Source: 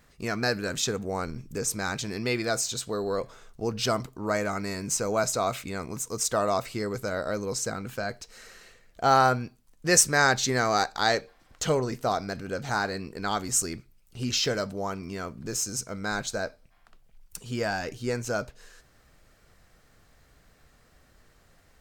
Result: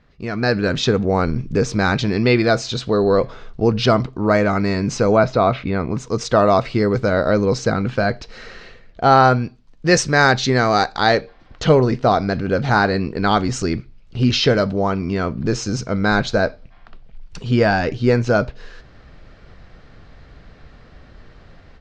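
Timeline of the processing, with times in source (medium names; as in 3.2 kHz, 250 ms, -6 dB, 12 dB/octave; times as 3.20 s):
5.16–5.97 s: distance through air 190 m
9.24–11.00 s: treble shelf 6.6 kHz +9 dB
whole clip: low-pass 4.6 kHz 24 dB/octave; bass shelf 490 Hz +6 dB; level rider gain up to 11.5 dB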